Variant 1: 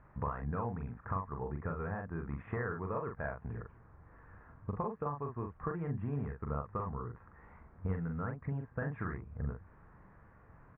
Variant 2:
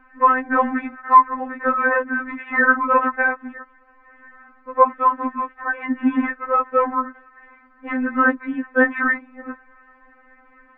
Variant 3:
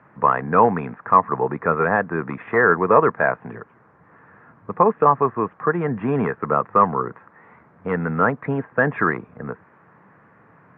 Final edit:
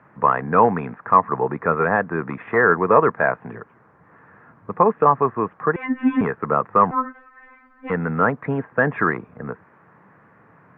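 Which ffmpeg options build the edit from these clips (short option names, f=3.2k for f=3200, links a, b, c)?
-filter_complex "[1:a]asplit=2[a][b];[2:a]asplit=3[c][d][e];[c]atrim=end=5.762[f];[a]atrim=start=5.758:end=6.212[g];[d]atrim=start=6.208:end=6.912[h];[b]atrim=start=6.908:end=7.902[i];[e]atrim=start=7.898[j];[f][g]acrossfade=d=0.004:c1=hsin:c2=hsin[k];[k][h]acrossfade=d=0.004:c1=hsin:c2=hsin[l];[l][i]acrossfade=d=0.004:c1=hsin:c2=hsin[m];[m][j]acrossfade=d=0.004:c1=hsin:c2=hsin"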